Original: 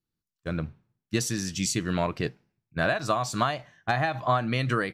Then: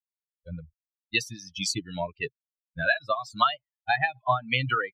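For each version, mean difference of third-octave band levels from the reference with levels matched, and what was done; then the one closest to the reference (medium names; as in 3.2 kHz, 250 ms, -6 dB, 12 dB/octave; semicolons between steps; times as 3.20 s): 14.0 dB: expander on every frequency bin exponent 3; FFT filter 310 Hz 0 dB, 3.1 kHz +14 dB, 7.1 kHz -3 dB; harmonic tremolo 3.9 Hz, depth 70%, crossover 570 Hz; trim +3 dB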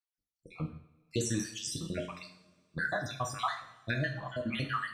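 8.0 dB: random holes in the spectrogram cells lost 67%; flange 0.43 Hz, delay 2.5 ms, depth 8 ms, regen -52%; two-slope reverb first 0.54 s, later 2.2 s, from -21 dB, DRR 2.5 dB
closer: second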